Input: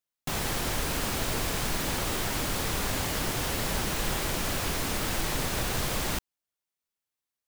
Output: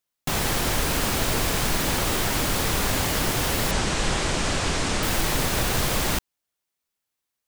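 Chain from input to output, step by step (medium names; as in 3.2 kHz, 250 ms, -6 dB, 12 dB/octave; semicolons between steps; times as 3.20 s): 3.71–5.03 s: steep low-pass 8.8 kHz 36 dB/octave; trim +6 dB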